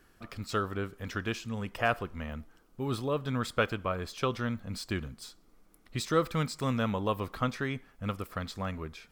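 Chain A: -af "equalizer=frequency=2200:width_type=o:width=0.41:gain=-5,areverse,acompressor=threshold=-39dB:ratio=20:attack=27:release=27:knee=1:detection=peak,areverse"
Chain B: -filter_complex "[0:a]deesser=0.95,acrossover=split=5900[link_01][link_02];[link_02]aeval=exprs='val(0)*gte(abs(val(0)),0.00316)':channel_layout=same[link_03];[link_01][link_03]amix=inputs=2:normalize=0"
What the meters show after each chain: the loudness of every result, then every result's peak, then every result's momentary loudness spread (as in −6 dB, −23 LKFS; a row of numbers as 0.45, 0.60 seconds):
−39.5, −34.0 LKFS; −24.0, −15.0 dBFS; 6, 11 LU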